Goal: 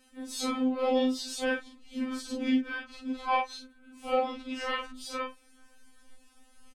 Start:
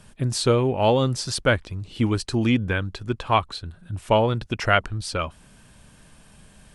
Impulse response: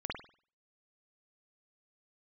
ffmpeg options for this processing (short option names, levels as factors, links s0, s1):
-filter_complex "[0:a]afftfilt=real='re':imag='-im':win_size=4096:overlap=0.75,asplit=4[s0][s1][s2][s3];[s1]asetrate=33038,aresample=44100,atempo=1.33484,volume=0.141[s4];[s2]asetrate=35002,aresample=44100,atempo=1.25992,volume=0.562[s5];[s3]asetrate=66075,aresample=44100,atempo=0.66742,volume=0.251[s6];[s0][s4][s5][s6]amix=inputs=4:normalize=0,afftfilt=real='re*3.46*eq(mod(b,12),0)':imag='im*3.46*eq(mod(b,12),0)':win_size=2048:overlap=0.75,volume=0.668"